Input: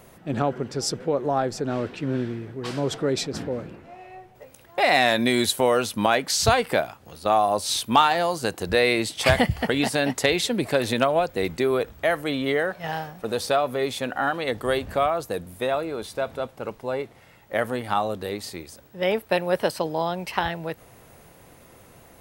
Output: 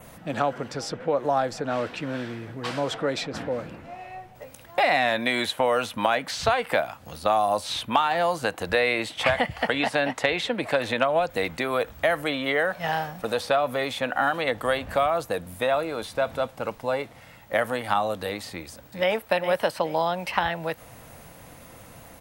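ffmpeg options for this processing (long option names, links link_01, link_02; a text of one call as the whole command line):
ffmpeg -i in.wav -filter_complex "[0:a]asettb=1/sr,asplit=3[link_01][link_02][link_03];[link_01]atrim=end=9.234[link_04];[link_02]atrim=start=9.23:end=11.31,asetpts=PTS-STARTPTS,afade=type=in:duration=0.004:curve=qsin,afade=type=out:start_time=2.076:duration=0.004:curve=qsin,highshelf=frequency=9300:gain=-11[link_05];[link_03]atrim=start=11.306[link_06];[link_04][link_05]acrossfade=duration=0.004:curve1=hsin:curve2=qsin[link_07];[link_07][link_06]acrossfade=duration=0.004:curve1=qsin:curve2=hsin,asplit=2[link_08][link_09];[link_09]afade=type=in:start_time=18.51:duration=0.01,afade=type=out:start_time=19.13:duration=0.01,aecho=0:1:410|820|1230:0.316228|0.0790569|0.0197642[link_10];[link_08][link_10]amix=inputs=2:normalize=0,equalizer=frequency=390:width=6.5:gain=-13,acrossover=split=390|3500[link_11][link_12][link_13];[link_11]acompressor=threshold=-41dB:ratio=4[link_14];[link_12]acompressor=threshold=-24dB:ratio=4[link_15];[link_13]acompressor=threshold=-47dB:ratio=4[link_16];[link_14][link_15][link_16]amix=inputs=3:normalize=0,adynamicequalizer=threshold=0.00282:dfrequency=4800:dqfactor=3.1:tfrequency=4800:tqfactor=3.1:attack=5:release=100:ratio=0.375:range=2.5:mode=cutabove:tftype=bell,volume=4.5dB" out.wav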